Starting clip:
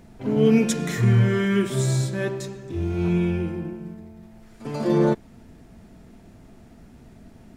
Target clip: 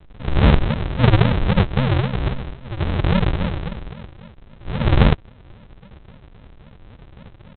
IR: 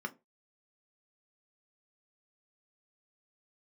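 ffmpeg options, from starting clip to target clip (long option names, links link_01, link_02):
-af "equalizer=frequency=510:width=6.8:gain=8,aresample=8000,acrusher=samples=29:mix=1:aa=0.000001:lfo=1:lforange=17.4:lforate=3.7,aresample=44100,volume=4.5dB"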